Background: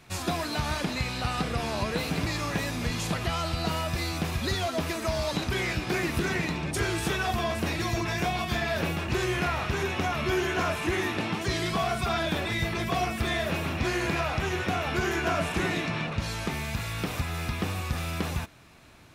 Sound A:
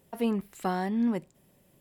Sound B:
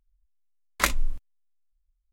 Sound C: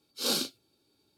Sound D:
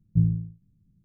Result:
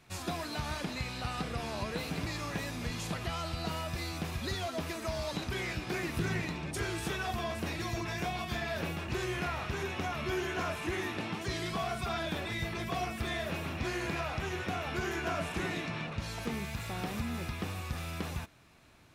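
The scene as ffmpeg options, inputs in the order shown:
-filter_complex "[0:a]volume=0.447[s0];[4:a]alimiter=limit=0.0794:level=0:latency=1:release=71[s1];[1:a]acompressor=threshold=0.0398:ratio=6:attack=3.2:release=140:knee=1:detection=peak[s2];[s1]atrim=end=1.04,asetpts=PTS-STARTPTS,volume=0.422,afade=t=in:d=0.004:c=hsin,afade=t=out:st=1.036:d=0.004:c=hsin,adelay=6040[s3];[s2]atrim=end=1.8,asetpts=PTS-STARTPTS,volume=0.398,afade=t=in:d=0.004:c=hsin,afade=t=out:st=1.796:d=0.004:c=hsin,adelay=16250[s4];[s0][s3][s4]amix=inputs=3:normalize=0"

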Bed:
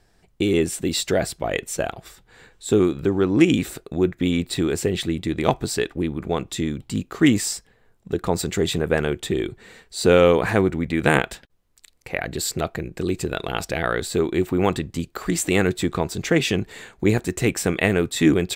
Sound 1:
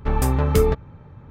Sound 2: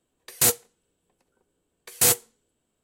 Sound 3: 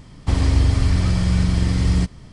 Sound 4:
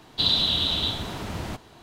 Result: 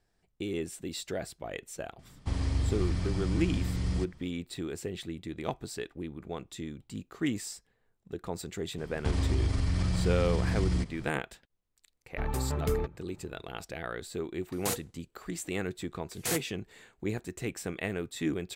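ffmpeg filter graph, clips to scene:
-filter_complex "[3:a]asplit=2[s0][s1];[0:a]volume=0.188[s2];[s1]acompressor=threshold=0.1:ratio=6:attack=3.2:release=140:knee=1:detection=peak[s3];[2:a]highshelf=f=6400:g=-9[s4];[s0]atrim=end=2.32,asetpts=PTS-STARTPTS,volume=0.224,afade=t=in:d=0.004:c=hsin,afade=t=out:st=2.316:d=0.004:c=hsin,adelay=1990[s5];[s3]atrim=end=2.32,asetpts=PTS-STARTPTS,volume=0.631,afade=t=in:d=0.004:c=hsin,afade=t=out:st=2.316:d=0.004:c=hsin,adelay=8780[s6];[1:a]atrim=end=1.3,asetpts=PTS-STARTPTS,volume=0.251,afade=t=in:d=0.004:c=hsin,afade=t=out:st=1.296:d=0.004:c=hsin,adelay=12120[s7];[s4]atrim=end=2.83,asetpts=PTS-STARTPTS,volume=0.355,afade=t=in:d=0.004:c=hsin,afade=t=out:st=2.826:d=0.004:c=hsin,adelay=14240[s8];[s2][s5][s6][s7][s8]amix=inputs=5:normalize=0"

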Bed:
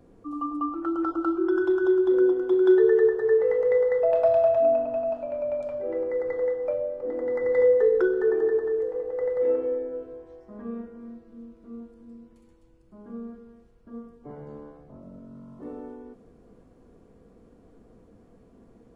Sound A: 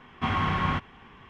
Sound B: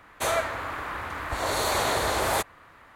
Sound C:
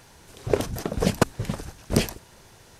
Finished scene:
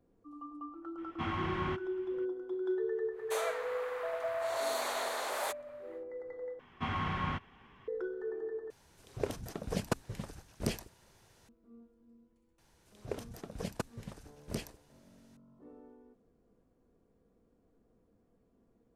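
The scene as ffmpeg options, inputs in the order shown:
-filter_complex "[1:a]asplit=2[s0][s1];[3:a]asplit=2[s2][s3];[0:a]volume=0.158[s4];[2:a]highpass=f=430:w=0.5412,highpass=f=430:w=1.3066[s5];[s4]asplit=3[s6][s7][s8];[s6]atrim=end=6.594[s9];[s1]atrim=end=1.29,asetpts=PTS-STARTPTS,volume=0.376[s10];[s7]atrim=start=7.876:end=8.704[s11];[s2]atrim=end=2.79,asetpts=PTS-STARTPTS,volume=0.237[s12];[s8]atrim=start=11.486[s13];[s0]atrim=end=1.29,asetpts=PTS-STARTPTS,volume=0.316,afade=t=in:d=0.02,afade=t=out:st=1.27:d=0.02,adelay=970[s14];[s5]atrim=end=2.95,asetpts=PTS-STARTPTS,volume=0.299,afade=t=in:d=0.1,afade=t=out:st=2.85:d=0.1,adelay=3100[s15];[s3]atrim=end=2.79,asetpts=PTS-STARTPTS,volume=0.141,afade=t=in:d=0.004:c=hsin,afade=t=out:st=2.786:d=0.004:c=hsin,adelay=12580[s16];[s9][s10]acrossfade=d=0.004:c1=hsin:c2=hsin[s17];[s17][s11]acrossfade=d=0.004:c1=hsin:c2=hsin[s18];[s18][s12]acrossfade=d=0.004:c1=hsin:c2=hsin[s19];[s19][s13]acrossfade=d=0.004:c1=hsin:c2=hsin[s20];[s20][s14][s15][s16]amix=inputs=4:normalize=0"

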